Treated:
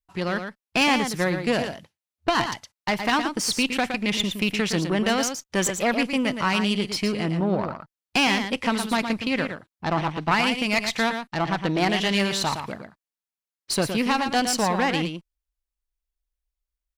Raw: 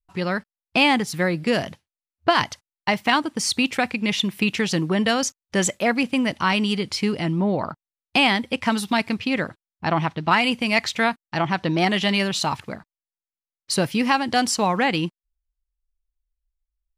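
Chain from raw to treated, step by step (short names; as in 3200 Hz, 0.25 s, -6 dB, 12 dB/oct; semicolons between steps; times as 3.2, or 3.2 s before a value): one diode to ground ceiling -21 dBFS; low shelf 120 Hz -5.5 dB; echo 0.115 s -7.5 dB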